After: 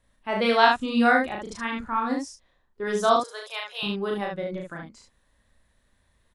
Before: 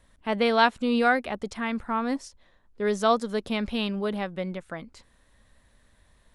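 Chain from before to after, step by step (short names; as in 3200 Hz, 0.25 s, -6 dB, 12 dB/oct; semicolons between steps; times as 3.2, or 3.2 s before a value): 3.16–3.83 inverse Chebyshev high-pass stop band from 250 Hz, stop band 40 dB; spectral noise reduction 8 dB; loudspeakers at several distances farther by 12 m -2 dB, 25 m -4 dB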